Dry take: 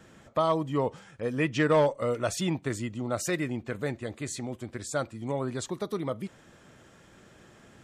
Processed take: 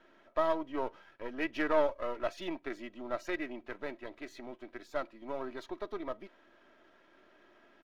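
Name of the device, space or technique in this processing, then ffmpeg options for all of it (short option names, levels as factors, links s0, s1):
crystal radio: -af "highpass=350,lowpass=3000,aeval=exprs='if(lt(val(0),0),0.447*val(0),val(0))':c=same,equalizer=f=7800:w=5:g=-12,aecho=1:1:3.1:0.52,volume=0.668"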